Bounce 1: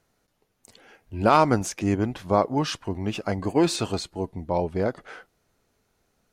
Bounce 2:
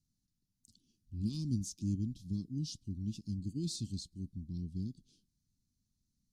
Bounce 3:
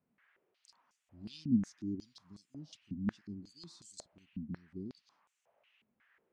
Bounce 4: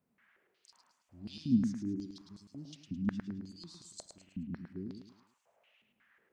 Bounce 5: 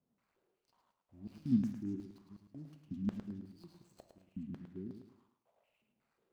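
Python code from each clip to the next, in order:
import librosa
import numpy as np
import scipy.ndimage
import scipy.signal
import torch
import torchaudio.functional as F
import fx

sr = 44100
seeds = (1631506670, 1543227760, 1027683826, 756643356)

y1 = scipy.signal.sosfilt(scipy.signal.cheby2(4, 50, [510.0, 2100.0], 'bandstop', fs=sr, output='sos'), x)
y1 = fx.high_shelf(y1, sr, hz=9200.0, db=-11.5)
y1 = y1 * 10.0 ** (-7.5 / 20.0)
y2 = fx.dmg_noise_band(y1, sr, seeds[0], low_hz=380.0, high_hz=2900.0, level_db=-75.0)
y2 = fx.filter_held_bandpass(y2, sr, hz=5.5, low_hz=230.0, high_hz=7600.0)
y2 = y2 * 10.0 ** (10.0 / 20.0)
y3 = fx.echo_feedback(y2, sr, ms=107, feedback_pct=35, wet_db=-7)
y3 = y3 * 10.0 ** (1.5 / 20.0)
y4 = scipy.signal.medfilt(y3, 25)
y4 = fx.rev_plate(y4, sr, seeds[1], rt60_s=0.69, hf_ratio=0.85, predelay_ms=0, drr_db=10.5)
y4 = y4 * 10.0 ** (-2.5 / 20.0)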